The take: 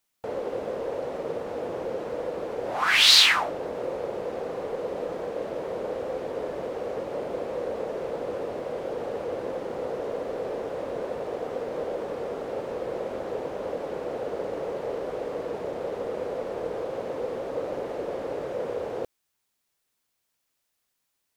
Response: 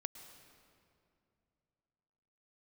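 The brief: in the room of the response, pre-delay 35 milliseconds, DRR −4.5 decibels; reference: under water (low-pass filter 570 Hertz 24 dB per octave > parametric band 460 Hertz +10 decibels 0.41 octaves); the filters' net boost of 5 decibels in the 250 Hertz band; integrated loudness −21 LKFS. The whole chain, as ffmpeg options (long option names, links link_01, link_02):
-filter_complex "[0:a]equalizer=frequency=250:width_type=o:gain=5,asplit=2[link_01][link_02];[1:a]atrim=start_sample=2205,adelay=35[link_03];[link_02][link_03]afir=irnorm=-1:irlink=0,volume=7dB[link_04];[link_01][link_04]amix=inputs=2:normalize=0,lowpass=frequency=570:width=0.5412,lowpass=frequency=570:width=1.3066,equalizer=frequency=460:width_type=o:width=0.41:gain=10,volume=-0.5dB"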